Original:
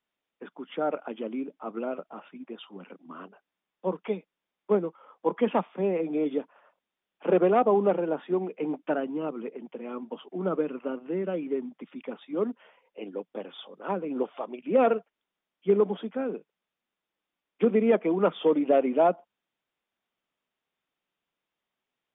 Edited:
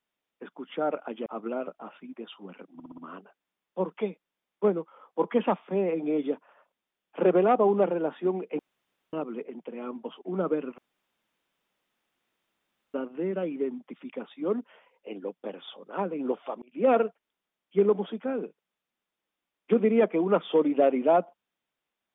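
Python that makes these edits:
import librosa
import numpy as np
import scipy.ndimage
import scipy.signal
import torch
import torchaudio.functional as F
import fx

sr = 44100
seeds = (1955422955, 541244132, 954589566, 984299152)

y = fx.edit(x, sr, fx.cut(start_s=1.26, length_s=0.31),
    fx.stutter(start_s=3.05, slice_s=0.06, count=5),
    fx.room_tone_fill(start_s=8.66, length_s=0.54),
    fx.insert_room_tone(at_s=10.85, length_s=2.16),
    fx.fade_in_span(start_s=14.53, length_s=0.26), tone=tone)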